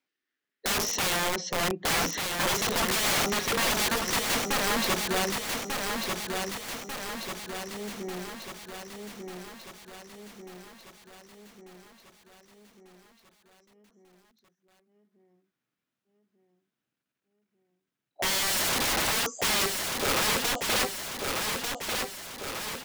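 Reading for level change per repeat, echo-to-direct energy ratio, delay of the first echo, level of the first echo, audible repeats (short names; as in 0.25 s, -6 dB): -5.0 dB, -3.0 dB, 1.193 s, -4.5 dB, 7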